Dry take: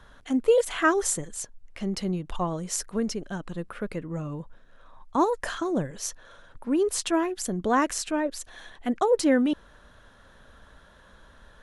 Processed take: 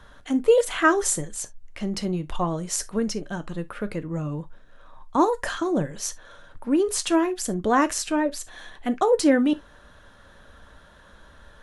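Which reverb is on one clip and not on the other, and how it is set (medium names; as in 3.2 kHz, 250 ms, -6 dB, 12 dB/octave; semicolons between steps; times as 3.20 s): gated-style reverb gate 90 ms falling, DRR 10.5 dB; trim +2.5 dB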